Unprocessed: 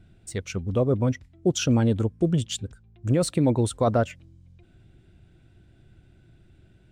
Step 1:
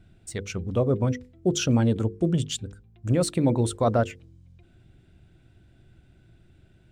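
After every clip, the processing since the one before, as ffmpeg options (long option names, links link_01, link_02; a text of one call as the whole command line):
ffmpeg -i in.wav -af "bandreject=frequency=50:width_type=h:width=6,bandreject=frequency=100:width_type=h:width=6,bandreject=frequency=150:width_type=h:width=6,bandreject=frequency=200:width_type=h:width=6,bandreject=frequency=250:width_type=h:width=6,bandreject=frequency=300:width_type=h:width=6,bandreject=frequency=350:width_type=h:width=6,bandreject=frequency=400:width_type=h:width=6,bandreject=frequency=450:width_type=h:width=6,bandreject=frequency=500:width_type=h:width=6" out.wav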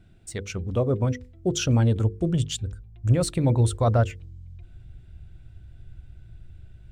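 ffmpeg -i in.wav -af "asubboost=boost=7.5:cutoff=92" out.wav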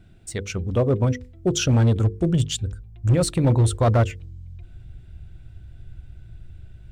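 ffmpeg -i in.wav -af "asoftclip=type=hard:threshold=-16dB,volume=3.5dB" out.wav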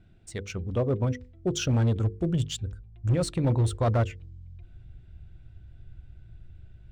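ffmpeg -i in.wav -af "adynamicsmooth=sensitivity=5.5:basefreq=6800,volume=-6dB" out.wav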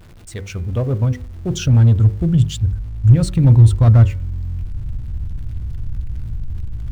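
ffmpeg -i in.wav -af "aeval=exprs='val(0)+0.5*0.00668*sgn(val(0))':channel_layout=same,asubboost=boost=6.5:cutoff=190,bandreject=frequency=185.9:width_type=h:width=4,bandreject=frequency=371.8:width_type=h:width=4,bandreject=frequency=557.7:width_type=h:width=4,bandreject=frequency=743.6:width_type=h:width=4,bandreject=frequency=929.5:width_type=h:width=4,bandreject=frequency=1115.4:width_type=h:width=4,bandreject=frequency=1301.3:width_type=h:width=4,bandreject=frequency=1487.2:width_type=h:width=4,bandreject=frequency=1673.1:width_type=h:width=4,bandreject=frequency=1859:width_type=h:width=4,bandreject=frequency=2044.9:width_type=h:width=4,bandreject=frequency=2230.8:width_type=h:width=4,bandreject=frequency=2416.7:width_type=h:width=4,volume=3.5dB" out.wav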